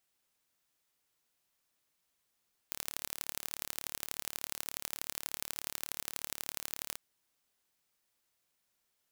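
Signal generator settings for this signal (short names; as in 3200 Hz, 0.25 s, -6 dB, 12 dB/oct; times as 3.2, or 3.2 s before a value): pulse train 36.6/s, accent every 3, -8 dBFS 4.24 s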